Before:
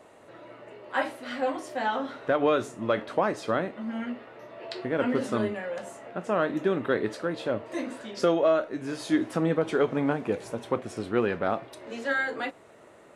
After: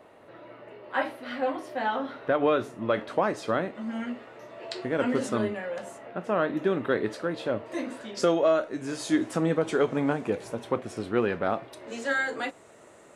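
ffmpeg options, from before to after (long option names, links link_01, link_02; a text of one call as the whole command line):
ffmpeg -i in.wav -af "asetnsamples=nb_out_samples=441:pad=0,asendcmd='2.94 equalizer g 0.5;3.75 equalizer g 8.5;5.29 equalizer g -1;5.98 equalizer g -8;6.62 equalizer g -1;8.17 equalizer g 7;10.3 equalizer g -0.5;11.88 equalizer g 9',equalizer=frequency=7500:width_type=o:width=0.89:gain=-11" out.wav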